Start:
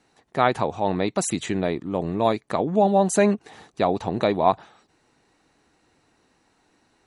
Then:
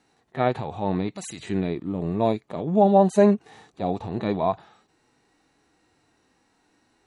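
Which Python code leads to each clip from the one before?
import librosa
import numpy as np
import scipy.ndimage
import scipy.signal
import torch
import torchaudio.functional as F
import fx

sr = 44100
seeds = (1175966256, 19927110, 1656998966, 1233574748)

y = fx.hpss(x, sr, part='percussive', gain_db=-18)
y = y * librosa.db_to_amplitude(2.5)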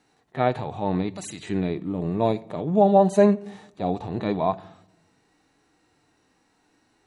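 y = fx.room_shoebox(x, sr, seeds[0], volume_m3=2500.0, walls='furnished', distance_m=0.43)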